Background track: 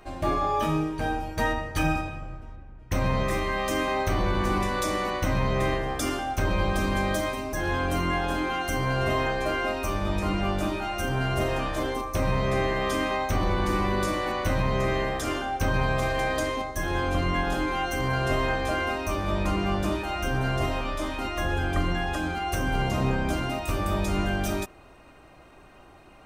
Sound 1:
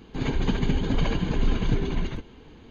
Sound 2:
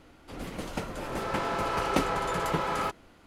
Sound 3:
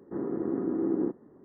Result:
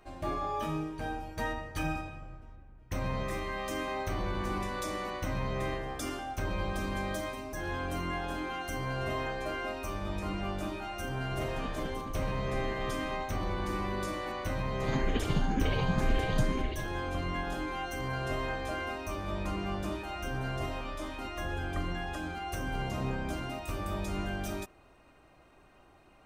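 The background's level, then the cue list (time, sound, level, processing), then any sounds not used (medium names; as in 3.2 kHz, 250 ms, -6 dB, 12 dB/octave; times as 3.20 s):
background track -8.5 dB
11.16 s: add 1 -17 dB
14.67 s: add 1 -3 dB + barber-pole phaser +2 Hz
not used: 2, 3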